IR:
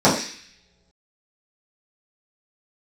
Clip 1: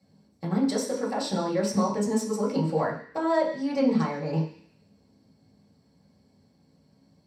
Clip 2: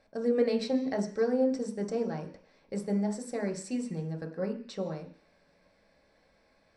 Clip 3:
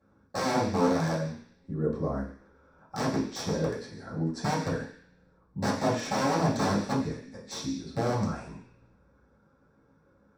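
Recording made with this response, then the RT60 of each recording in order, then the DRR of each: 3; non-exponential decay, non-exponential decay, non-exponential decay; −6.0, 1.5, −10.5 decibels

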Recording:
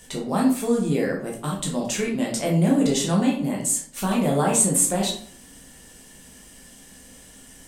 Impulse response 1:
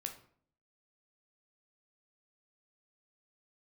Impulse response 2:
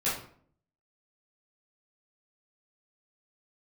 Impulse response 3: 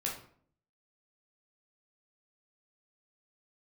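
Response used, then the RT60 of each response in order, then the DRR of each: 3; 0.55, 0.55, 0.55 seconds; 4.0, −11.0, −3.0 decibels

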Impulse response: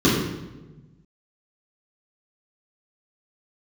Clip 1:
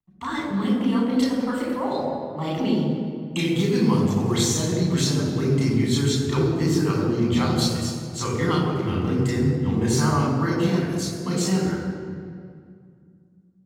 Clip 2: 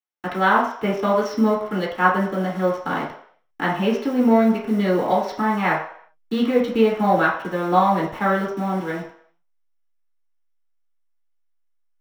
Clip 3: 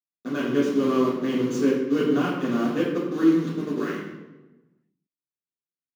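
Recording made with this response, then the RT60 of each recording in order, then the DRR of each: 3; 2.2, 0.60, 1.1 seconds; −4.0, −5.0, −9.5 decibels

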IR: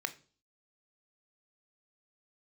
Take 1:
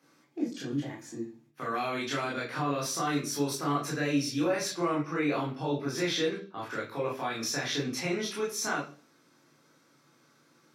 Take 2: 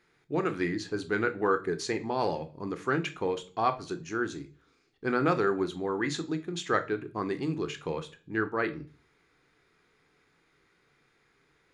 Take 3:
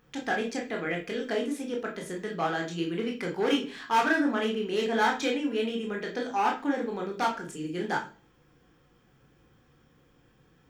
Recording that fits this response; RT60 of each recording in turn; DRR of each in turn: 2; 0.40, 0.40, 0.40 seconds; −5.0, 9.5, 0.0 decibels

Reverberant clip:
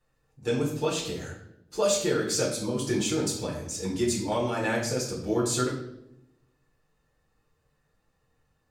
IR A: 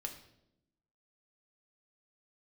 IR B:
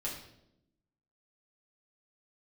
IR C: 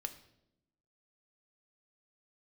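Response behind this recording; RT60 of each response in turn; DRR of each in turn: B; 0.80, 0.80, 0.85 seconds; 3.0, −5.5, 7.0 decibels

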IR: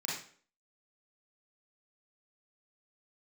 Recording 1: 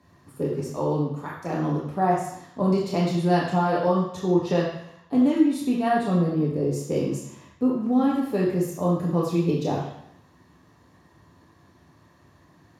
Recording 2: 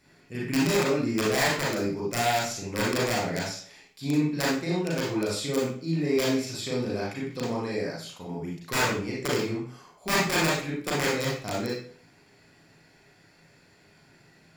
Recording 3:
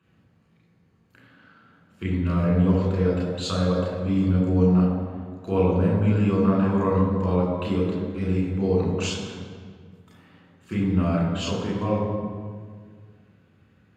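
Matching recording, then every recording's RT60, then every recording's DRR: 2; 0.75, 0.50, 1.8 seconds; −4.0, −5.5, −4.5 decibels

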